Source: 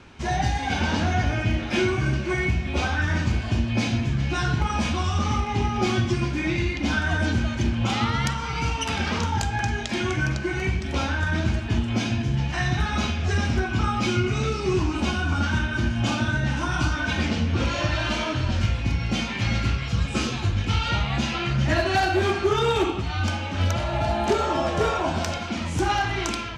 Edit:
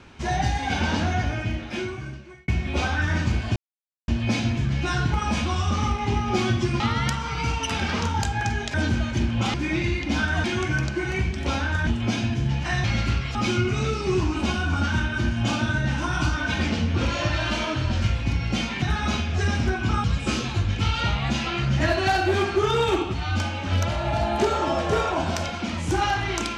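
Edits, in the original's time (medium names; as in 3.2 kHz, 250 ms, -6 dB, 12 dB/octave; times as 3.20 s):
0.92–2.48 s: fade out
3.56 s: insert silence 0.52 s
6.28–7.18 s: swap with 7.98–9.92 s
11.35–11.75 s: delete
12.72–13.94 s: swap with 19.41–19.92 s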